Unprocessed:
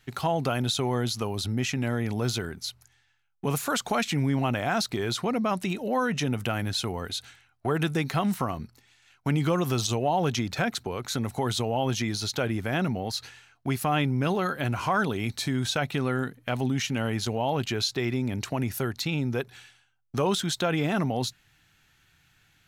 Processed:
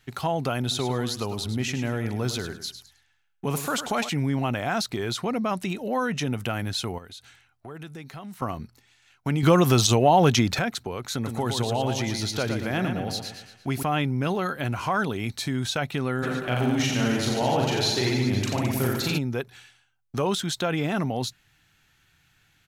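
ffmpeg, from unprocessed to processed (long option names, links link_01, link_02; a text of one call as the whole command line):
ffmpeg -i in.wav -filter_complex "[0:a]asplit=3[link_01][link_02][link_03];[link_01]afade=type=out:start_time=0.7:duration=0.02[link_04];[link_02]aecho=1:1:103|206|309:0.299|0.0746|0.0187,afade=type=in:start_time=0.7:duration=0.02,afade=type=out:start_time=4.08:duration=0.02[link_05];[link_03]afade=type=in:start_time=4.08:duration=0.02[link_06];[link_04][link_05][link_06]amix=inputs=3:normalize=0,asettb=1/sr,asplit=3[link_07][link_08][link_09];[link_07]atrim=end=6.984[link_10];[link_08]atrim=start=6.98:end=8.42,asetpts=PTS-STARTPTS,afade=type=in:duration=0.004:curve=qsin,afade=type=out:start_time=1.436:duration=0.004:curve=qsin,acompressor=threshold=-48dB:ratio=2:attack=3.2:release=140:knee=1:detection=peak[link_11];[link_09]atrim=start=8.416[link_12];[link_10][link_11]acrossfade=duration=0.004:curve1=hsin:curve2=qsin[link_13];[link_13][link_12]acrossfade=duration=0.004:curve1=qsin:curve2=hsin,asettb=1/sr,asplit=3[link_14][link_15][link_16];[link_14]atrim=end=11.144[link_17];[link_15]atrim=start=11.14:end=13.83,asetpts=PTS-STARTPTS,afade=type=in:duration=0.004:curve=qsin,afade=type=out:start_time=2.686:duration=0.004:curve=qsin,aecho=1:1:116|232|348|464|580:0.501|0.221|0.097|0.0427|0.0188,atrim=end_sample=118629[link_18];[link_16]atrim=start=13.826[link_19];[link_17][link_18]acrossfade=duration=0.004:curve1=hsin:curve2=qsin[link_20];[link_20][link_19]acrossfade=duration=0.004:curve1=qsin:curve2=hsin,asplit=3[link_21][link_22][link_23];[link_21]afade=type=out:start_time=16.22:duration=0.02[link_24];[link_22]aecho=1:1:40|88|145.6|214.7|297.7|397.2|516.6|660:0.794|0.631|0.501|0.398|0.316|0.251|0.2|0.158,afade=type=in:start_time=16.22:duration=0.02,afade=type=out:start_time=19.17:duration=0.02[link_25];[link_23]afade=type=in:start_time=19.17:duration=0.02[link_26];[link_24][link_25][link_26]amix=inputs=3:normalize=0,asplit=3[link_27][link_28][link_29];[link_27]atrim=end=9.432[link_30];[link_28]atrim=start=9.428:end=10.592,asetpts=PTS-STARTPTS,volume=7.5dB[link_31];[link_29]atrim=start=10.588[link_32];[link_30][link_31]acrossfade=duration=0.004:curve1=hsin:curve2=hsin[link_33];[link_33][link_32]acrossfade=duration=0.004:curve1=hsin:curve2=hsin" out.wav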